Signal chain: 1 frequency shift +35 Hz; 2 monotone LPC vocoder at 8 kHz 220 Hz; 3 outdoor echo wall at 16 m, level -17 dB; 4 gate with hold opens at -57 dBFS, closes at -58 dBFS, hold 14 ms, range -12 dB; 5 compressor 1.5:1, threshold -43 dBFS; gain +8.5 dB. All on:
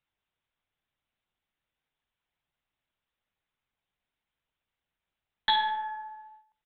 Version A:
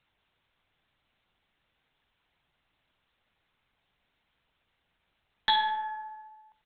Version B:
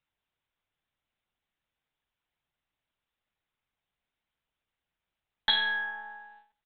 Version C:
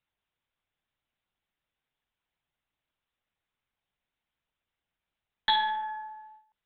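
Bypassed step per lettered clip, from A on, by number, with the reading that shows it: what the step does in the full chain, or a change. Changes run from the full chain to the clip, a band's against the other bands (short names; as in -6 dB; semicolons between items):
4, momentary loudness spread change +3 LU; 1, 1 kHz band -14.5 dB; 3, momentary loudness spread change +3 LU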